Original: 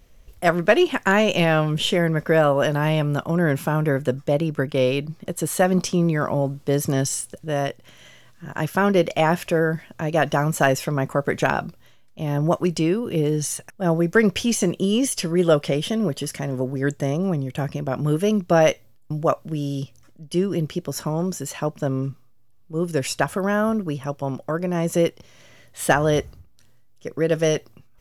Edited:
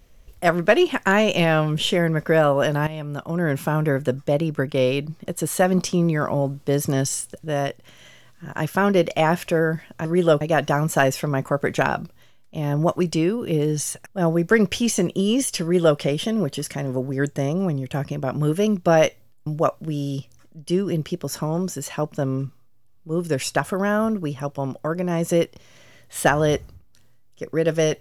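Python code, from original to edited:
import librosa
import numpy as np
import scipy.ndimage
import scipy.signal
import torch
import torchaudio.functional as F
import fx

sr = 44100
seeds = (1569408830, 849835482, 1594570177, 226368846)

y = fx.edit(x, sr, fx.fade_in_from(start_s=2.87, length_s=0.8, floor_db=-14.5),
    fx.duplicate(start_s=15.26, length_s=0.36, to_s=10.05), tone=tone)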